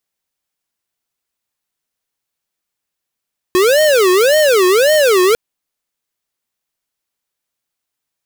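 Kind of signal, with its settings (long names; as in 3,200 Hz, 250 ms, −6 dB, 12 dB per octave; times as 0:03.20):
siren wail 362–620 Hz 1.8 per second square −10.5 dBFS 1.80 s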